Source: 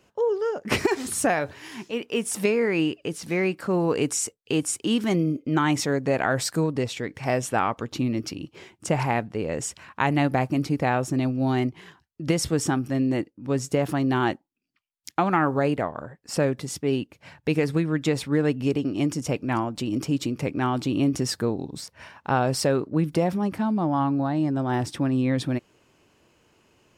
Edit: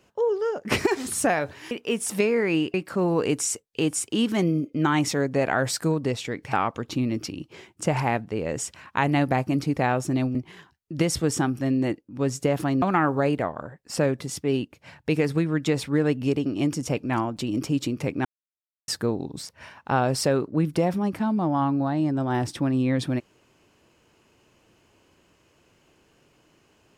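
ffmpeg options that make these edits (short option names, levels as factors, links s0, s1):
-filter_complex "[0:a]asplit=8[s0][s1][s2][s3][s4][s5][s6][s7];[s0]atrim=end=1.712[s8];[s1]atrim=start=1.958:end=2.992[s9];[s2]atrim=start=3.458:end=7.252[s10];[s3]atrim=start=7.558:end=11.382[s11];[s4]atrim=start=11.638:end=14.112[s12];[s5]atrim=start=15.208:end=20.64,asetpts=PTS-STARTPTS,afade=t=out:st=5.428:d=0.004:c=hsin[s13];[s6]atrim=start=20.64:end=21.27,asetpts=PTS-STARTPTS,volume=0[s14];[s7]atrim=start=21.27,asetpts=PTS-STARTPTS,afade=t=in:d=0.004:c=hsin[s15];[s8][s9]acrossfade=d=0.004:c1=hsin:c2=hsin[s16];[s16][s10]acrossfade=d=0.004:c1=hsin:c2=hsin[s17];[s17][s11]acrossfade=d=0.004:c1=hsin:c2=hsin[s18];[s18][s12]acrossfade=d=0.004:c1=hsin:c2=hsin[s19];[s13][s14][s15]concat=n=3:v=0:a=1[s20];[s19][s20]acrossfade=d=0.004:c1=hsin:c2=hsin"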